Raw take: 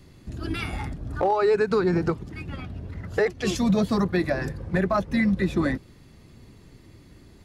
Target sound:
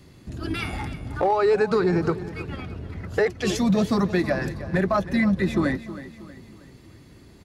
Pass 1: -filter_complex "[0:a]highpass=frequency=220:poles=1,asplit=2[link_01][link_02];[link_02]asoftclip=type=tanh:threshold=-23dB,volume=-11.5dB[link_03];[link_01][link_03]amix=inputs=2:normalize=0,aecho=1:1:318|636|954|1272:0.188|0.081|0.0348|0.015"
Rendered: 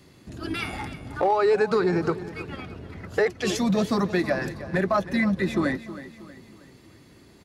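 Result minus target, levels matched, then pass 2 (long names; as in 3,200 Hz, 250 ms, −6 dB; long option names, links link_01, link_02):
125 Hz band −3.0 dB
-filter_complex "[0:a]highpass=frequency=63:poles=1,asplit=2[link_01][link_02];[link_02]asoftclip=type=tanh:threshold=-23dB,volume=-11.5dB[link_03];[link_01][link_03]amix=inputs=2:normalize=0,aecho=1:1:318|636|954|1272:0.188|0.081|0.0348|0.015"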